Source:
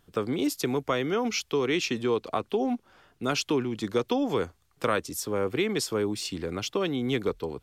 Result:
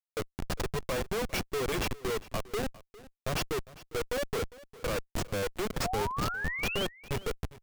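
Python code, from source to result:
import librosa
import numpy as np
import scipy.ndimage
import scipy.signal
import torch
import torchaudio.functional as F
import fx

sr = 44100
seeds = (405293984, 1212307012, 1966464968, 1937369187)

y = fx.noise_reduce_blind(x, sr, reduce_db=10)
y = y + 0.97 * np.pad(y, (int(1.8 * sr / 1000.0), 0))[:len(y)]
y = fx.schmitt(y, sr, flips_db=-25.0)
y = fx.spec_paint(y, sr, seeds[0], shape='rise', start_s=5.84, length_s=1.02, low_hz=670.0, high_hz=3300.0, level_db=-33.0)
y = y + 10.0 ** (-19.5 / 20.0) * np.pad(y, (int(404 * sr / 1000.0), 0))[:len(y)]
y = F.gain(torch.from_numpy(y), -2.5).numpy()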